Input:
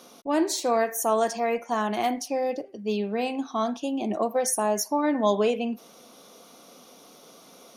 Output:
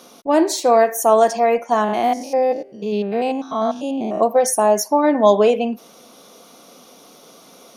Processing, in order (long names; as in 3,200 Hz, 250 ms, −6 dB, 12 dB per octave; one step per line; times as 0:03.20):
0:01.84–0:04.22: spectrum averaged block by block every 100 ms
dynamic equaliser 640 Hz, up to +6 dB, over −35 dBFS, Q 0.93
level +5 dB